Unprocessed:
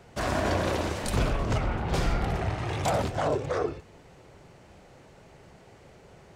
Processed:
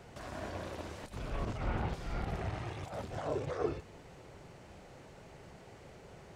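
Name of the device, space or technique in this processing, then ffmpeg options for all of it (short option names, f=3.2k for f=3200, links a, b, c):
de-esser from a sidechain: -filter_complex "[0:a]asplit=2[a][b];[b]highpass=4.7k,apad=whole_len=280364[c];[a][c]sidechaincompress=threshold=-55dB:ratio=10:attack=0.94:release=56,volume=-1dB"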